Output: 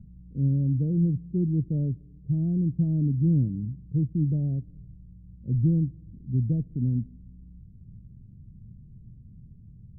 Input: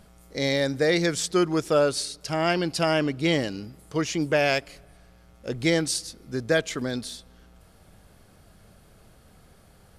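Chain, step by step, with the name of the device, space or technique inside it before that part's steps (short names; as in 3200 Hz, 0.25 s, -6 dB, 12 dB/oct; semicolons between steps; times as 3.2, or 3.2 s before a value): the neighbour's flat through the wall (LPF 220 Hz 24 dB/oct; bell 120 Hz +7.5 dB 0.75 oct); gain +5.5 dB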